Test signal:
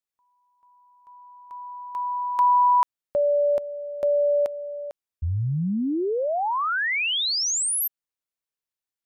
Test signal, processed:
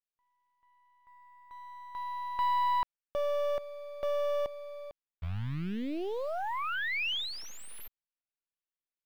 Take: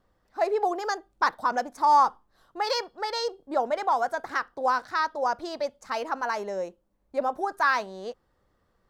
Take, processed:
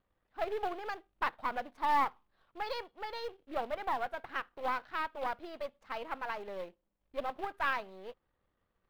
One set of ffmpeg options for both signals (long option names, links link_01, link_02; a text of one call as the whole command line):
ffmpeg -i in.wav -af "aeval=exprs='if(lt(val(0),0),0.447*val(0),val(0))':channel_layout=same,acrusher=bits=3:mode=log:mix=0:aa=0.000001,highshelf=frequency=4600:width_type=q:width=1.5:gain=-13.5,volume=-8dB" out.wav